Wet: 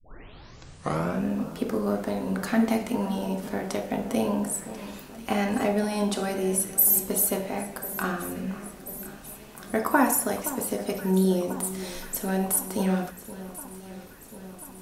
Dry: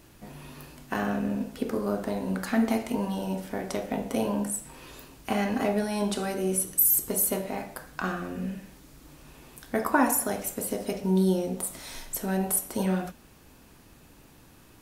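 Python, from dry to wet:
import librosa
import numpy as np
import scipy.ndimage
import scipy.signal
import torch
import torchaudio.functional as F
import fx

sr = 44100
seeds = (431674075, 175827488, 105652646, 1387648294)

y = fx.tape_start_head(x, sr, length_s=1.25)
y = fx.hum_notches(y, sr, base_hz=60, count=3)
y = fx.echo_alternate(y, sr, ms=520, hz=1400.0, feedback_pct=80, wet_db=-14.0)
y = F.gain(torch.from_numpy(y), 1.5).numpy()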